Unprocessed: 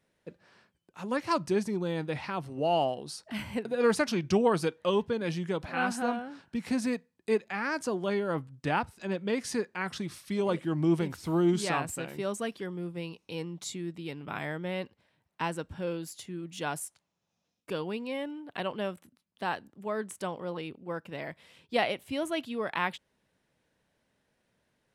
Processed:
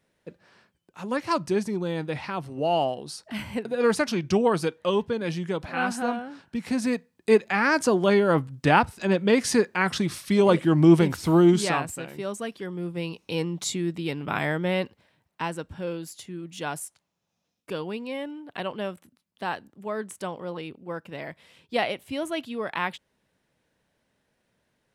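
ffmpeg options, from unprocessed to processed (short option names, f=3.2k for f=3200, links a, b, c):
-af "volume=18dB,afade=t=in:st=6.74:d=0.79:silence=0.446684,afade=t=out:st=11.2:d=0.74:silence=0.354813,afade=t=in:st=12.54:d=0.81:silence=0.398107,afade=t=out:st=14.72:d=0.7:silence=0.446684"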